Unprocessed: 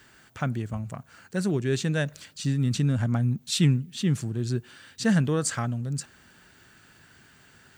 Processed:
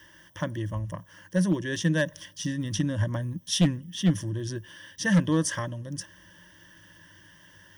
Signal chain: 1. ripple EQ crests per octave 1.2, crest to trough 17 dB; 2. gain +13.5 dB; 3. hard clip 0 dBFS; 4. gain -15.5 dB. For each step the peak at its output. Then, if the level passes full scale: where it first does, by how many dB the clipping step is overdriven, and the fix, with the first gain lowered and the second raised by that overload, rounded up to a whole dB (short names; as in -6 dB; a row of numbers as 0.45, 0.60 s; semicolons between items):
-4.5, +9.0, 0.0, -15.5 dBFS; step 2, 9.0 dB; step 2 +4.5 dB, step 4 -6.5 dB